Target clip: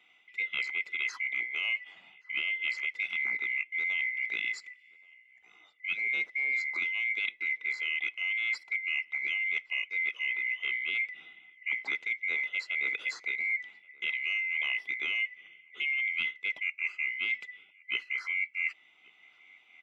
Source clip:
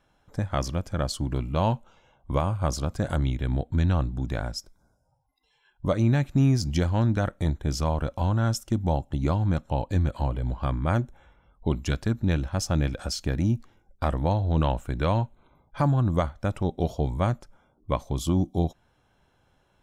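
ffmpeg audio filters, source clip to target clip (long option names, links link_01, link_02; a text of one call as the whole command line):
ffmpeg -i in.wav -filter_complex "[0:a]afftfilt=real='real(if(lt(b,920),b+92*(1-2*mod(floor(b/92),2)),b),0)':imag='imag(if(lt(b,920),b+92*(1-2*mod(floor(b/92),2)),b),0)':win_size=2048:overlap=0.75,acrossover=split=6100[link_01][link_02];[link_02]acompressor=threshold=-50dB:ratio=4:attack=1:release=60[link_03];[link_01][link_03]amix=inputs=2:normalize=0,acrossover=split=180 5100:gain=0.126 1 0.158[link_04][link_05][link_06];[link_04][link_05][link_06]amix=inputs=3:normalize=0,areverse,acompressor=threshold=-34dB:ratio=5,areverse,highshelf=frequency=8900:gain=-7,asplit=2[link_07][link_08];[link_08]adelay=1125,lowpass=frequency=1600:poles=1,volume=-23dB,asplit=2[link_09][link_10];[link_10]adelay=1125,lowpass=frequency=1600:poles=1,volume=0.26[link_11];[link_09][link_11]amix=inputs=2:normalize=0[link_12];[link_07][link_12]amix=inputs=2:normalize=0,volume=4dB" out.wav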